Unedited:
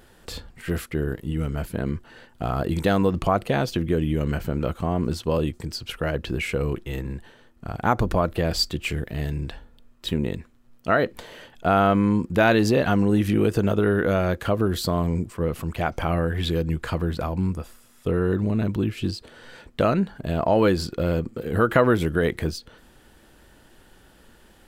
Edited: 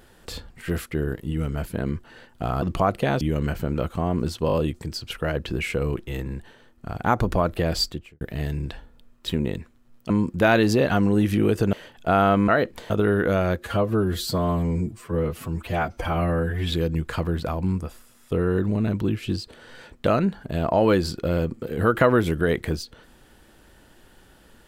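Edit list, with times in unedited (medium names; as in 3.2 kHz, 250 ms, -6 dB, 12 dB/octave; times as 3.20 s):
2.62–3.09 s: delete
3.68–4.06 s: delete
5.32 s: stutter 0.02 s, 4 plays
8.57–9.00 s: studio fade out
10.89–11.31 s: swap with 12.06–13.69 s
14.37–16.46 s: stretch 1.5×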